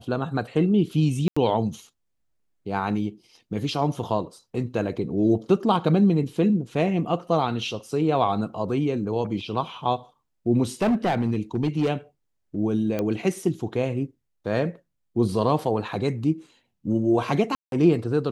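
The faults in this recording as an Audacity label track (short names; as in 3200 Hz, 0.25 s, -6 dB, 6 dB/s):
1.280000	1.360000	gap 85 ms
10.820000	11.900000	clipped -17.5 dBFS
12.990000	12.990000	pop -14 dBFS
17.550000	17.720000	gap 0.172 s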